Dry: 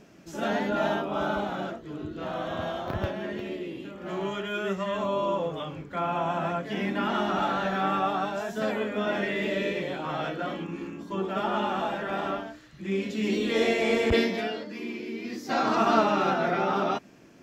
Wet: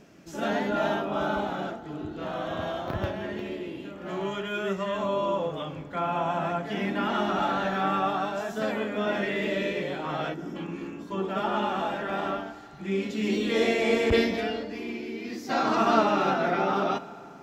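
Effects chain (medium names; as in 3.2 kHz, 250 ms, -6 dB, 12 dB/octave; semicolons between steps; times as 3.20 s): time-frequency box 10.34–10.56 s, 440–4700 Hz -19 dB; on a send: reverberation RT60 3.2 s, pre-delay 4 ms, DRR 14 dB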